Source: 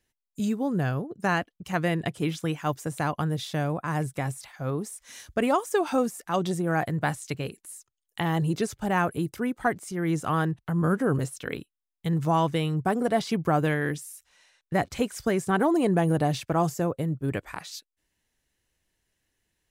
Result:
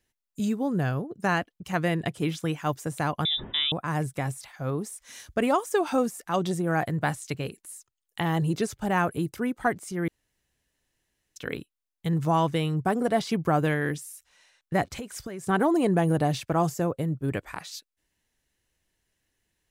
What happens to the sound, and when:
3.25–3.72 inverted band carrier 3700 Hz
10.08–11.36 room tone
14.94–15.44 compressor 10:1, threshold -32 dBFS

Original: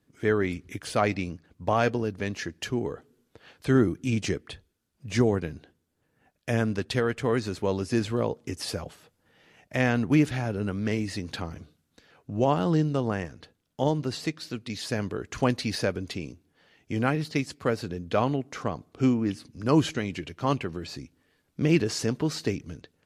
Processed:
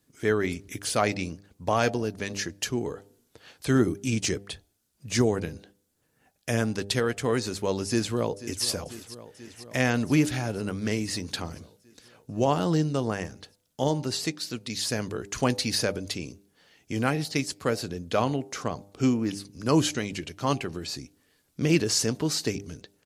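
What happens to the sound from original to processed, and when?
7.87–8.65 echo throw 0.49 s, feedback 75%, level -15.5 dB
whole clip: tone controls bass -1 dB, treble +10 dB; de-hum 99.85 Hz, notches 9

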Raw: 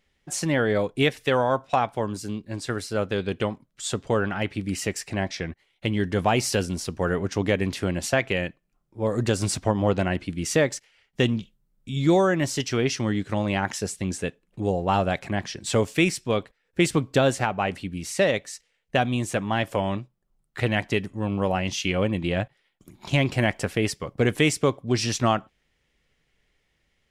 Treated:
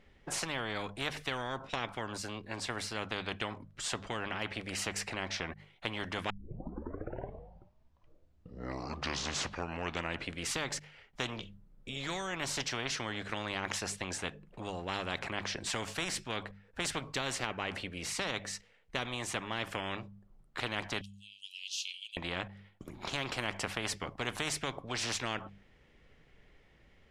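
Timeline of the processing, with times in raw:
6.3 tape start 4.12 s
21.01–22.17 steep high-pass 2900 Hz 72 dB/oct
whole clip: LPF 1400 Hz 6 dB/oct; notches 50/100/150/200 Hz; spectral compressor 4:1; gain -8 dB

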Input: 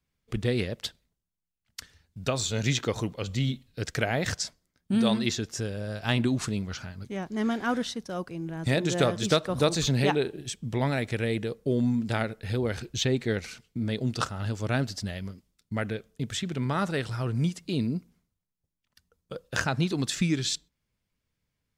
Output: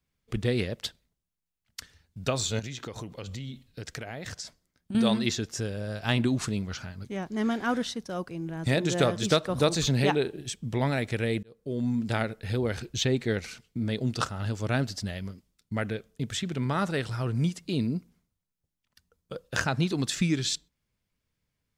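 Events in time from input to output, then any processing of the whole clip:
2.59–4.95 compressor 8:1, threshold -34 dBFS
11.43–12.04 fade in

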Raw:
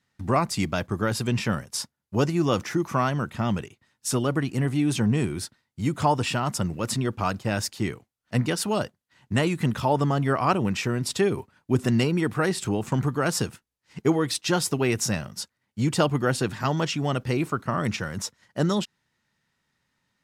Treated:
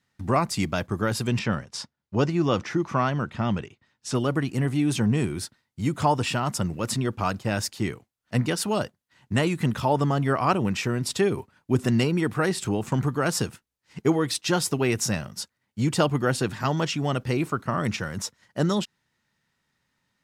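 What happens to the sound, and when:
1.39–4.15 LPF 5300 Hz

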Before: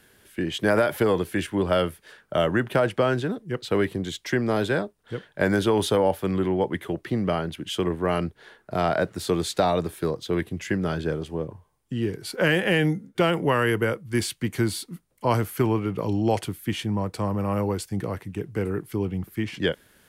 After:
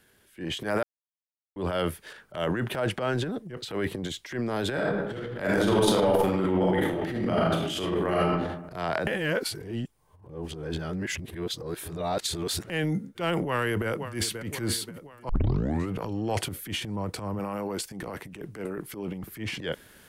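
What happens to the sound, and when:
0.83–1.56 mute
4.72–8.27 reverb throw, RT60 0.9 s, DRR -4 dB
9.07–12.7 reverse
13.42–14.44 echo throw 0.53 s, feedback 60%, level -18 dB
15.29 tape start 0.62 s
17.39–19.24 bell 94 Hz -11 dB 0.97 oct
whole clip: transient shaper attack -10 dB, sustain +10 dB; gain -5.5 dB

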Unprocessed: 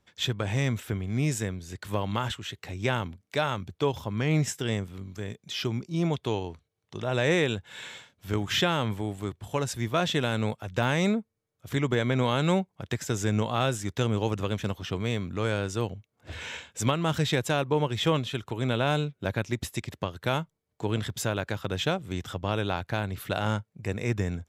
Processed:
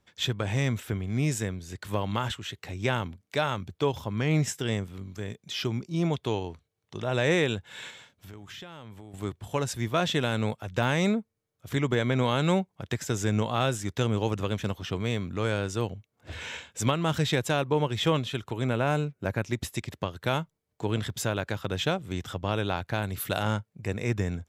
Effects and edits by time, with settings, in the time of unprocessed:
7.9–9.14 compressor 4:1, threshold -44 dBFS
18.65–19.43 bell 3500 Hz -12 dB 0.42 oct
23.02–23.43 high shelf 7100 Hz +12 dB

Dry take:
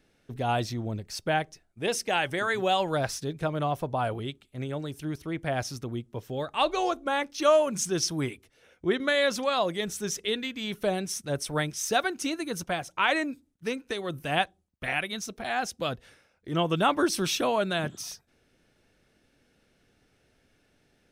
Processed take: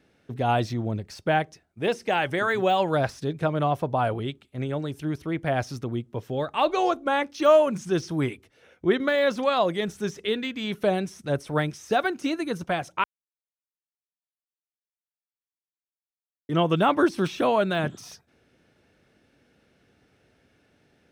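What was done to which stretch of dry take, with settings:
13.04–16.49 mute
whole clip: de-esser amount 90%; HPF 64 Hz; high shelf 4400 Hz -8.5 dB; gain +4.5 dB

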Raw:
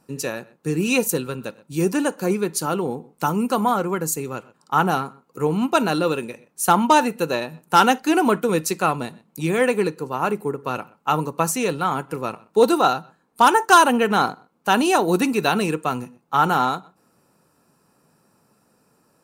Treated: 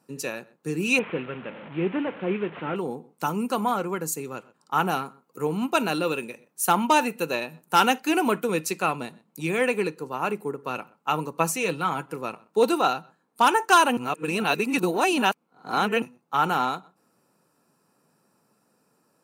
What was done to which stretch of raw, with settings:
0.99–2.76 delta modulation 16 kbps, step -30 dBFS
4.75–8.48 high shelf 12000 Hz +8 dB
11.35–12.06 comb 6.2 ms, depth 42%
13.97–16.02 reverse
whole clip: HPF 140 Hz; dynamic EQ 2500 Hz, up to +7 dB, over -42 dBFS, Q 3; gain -5 dB

